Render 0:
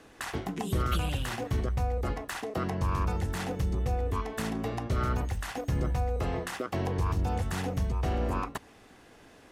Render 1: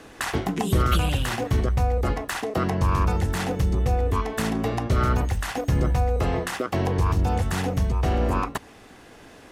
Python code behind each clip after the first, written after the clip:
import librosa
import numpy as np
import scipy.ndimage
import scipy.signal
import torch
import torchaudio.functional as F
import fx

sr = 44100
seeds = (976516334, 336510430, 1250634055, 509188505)

y = fx.rider(x, sr, range_db=3, speed_s=2.0)
y = y * 10.0 ** (7.0 / 20.0)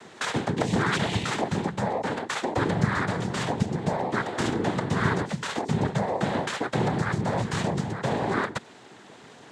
y = fx.noise_vocoder(x, sr, seeds[0], bands=6)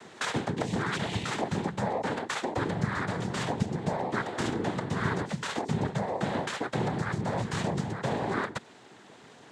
y = fx.rider(x, sr, range_db=10, speed_s=0.5)
y = y * 10.0 ** (-4.0 / 20.0)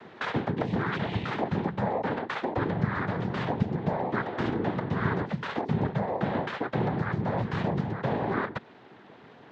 y = fx.air_absorb(x, sr, metres=300.0)
y = y * 10.0 ** (2.5 / 20.0)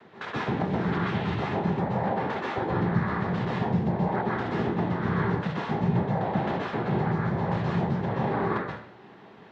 y = fx.rev_plate(x, sr, seeds[1], rt60_s=0.57, hf_ratio=0.8, predelay_ms=115, drr_db=-5.0)
y = y * 10.0 ** (-5.0 / 20.0)